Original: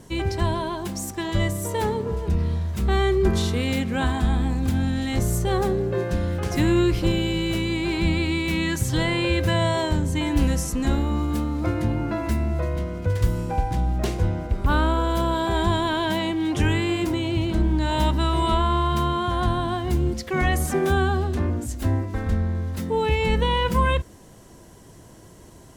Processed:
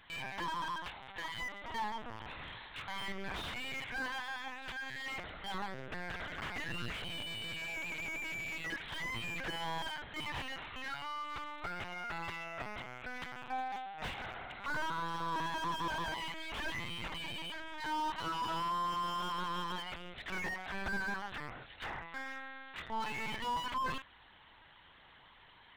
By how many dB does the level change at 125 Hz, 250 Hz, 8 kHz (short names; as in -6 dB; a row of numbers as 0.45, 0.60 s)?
-28.0, -24.0, -18.5 dB